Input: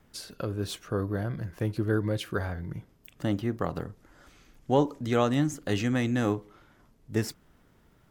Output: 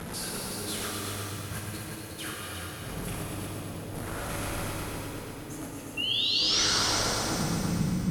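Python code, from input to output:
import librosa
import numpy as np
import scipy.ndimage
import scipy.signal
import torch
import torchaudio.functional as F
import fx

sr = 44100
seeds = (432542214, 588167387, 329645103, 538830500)

y = x + 0.5 * 10.0 ** (-28.0 / 20.0) * np.sign(x)
y = scipy.signal.sosfilt(scipy.signal.butter(2, 50.0, 'highpass', fs=sr, output='sos'), y)
y = fx.high_shelf(y, sr, hz=2400.0, db=-10.0)
y = fx.over_compress(y, sr, threshold_db=-37.0, ratio=-1.0)
y = fx.filter_sweep_lowpass(y, sr, from_hz=11000.0, to_hz=180.0, start_s=6.05, end_s=7.45, q=4.7)
y = fx.spec_paint(y, sr, seeds[0], shape='rise', start_s=5.97, length_s=0.67, low_hz=2700.0, high_hz=6200.0, level_db=-23.0)
y = fx.echo_heads(y, sr, ms=120, heads='all three', feedback_pct=41, wet_db=-8.5)
y = fx.rev_shimmer(y, sr, seeds[1], rt60_s=2.8, semitones=7, shimmer_db=-8, drr_db=-1.5)
y = y * librosa.db_to_amplitude(-8.0)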